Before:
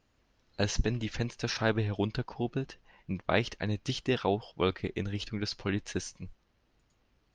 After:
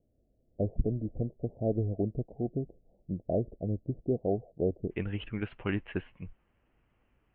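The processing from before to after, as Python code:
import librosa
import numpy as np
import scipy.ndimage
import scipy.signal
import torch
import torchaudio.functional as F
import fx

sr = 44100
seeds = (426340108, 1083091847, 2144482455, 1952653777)

y = fx.steep_lowpass(x, sr, hz=fx.steps((0.0, 690.0), (4.9, 3000.0)), slope=72)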